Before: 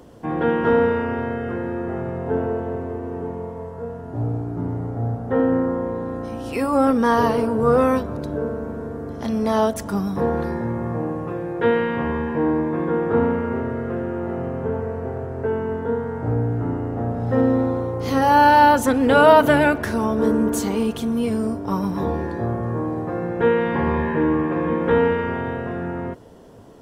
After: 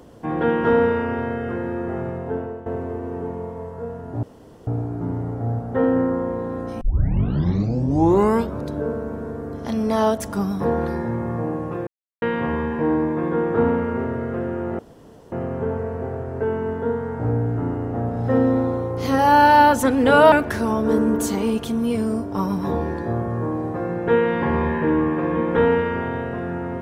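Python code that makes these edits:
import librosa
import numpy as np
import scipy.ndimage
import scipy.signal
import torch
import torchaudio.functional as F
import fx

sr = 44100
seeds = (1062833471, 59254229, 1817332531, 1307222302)

y = fx.edit(x, sr, fx.fade_out_to(start_s=2.05, length_s=0.61, floor_db=-12.5),
    fx.insert_room_tone(at_s=4.23, length_s=0.44),
    fx.tape_start(start_s=6.37, length_s=1.78),
    fx.silence(start_s=11.43, length_s=0.35),
    fx.insert_room_tone(at_s=14.35, length_s=0.53),
    fx.cut(start_s=19.35, length_s=0.3), tone=tone)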